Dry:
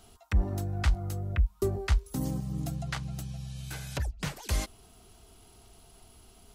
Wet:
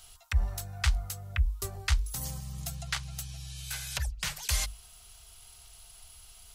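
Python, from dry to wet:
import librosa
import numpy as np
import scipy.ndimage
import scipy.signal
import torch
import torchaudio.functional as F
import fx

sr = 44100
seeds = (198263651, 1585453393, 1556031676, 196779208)

y = fx.tone_stack(x, sr, knobs='10-0-10')
y = fx.hum_notches(y, sr, base_hz=50, count=7)
y = y * librosa.db_to_amplitude(8.0)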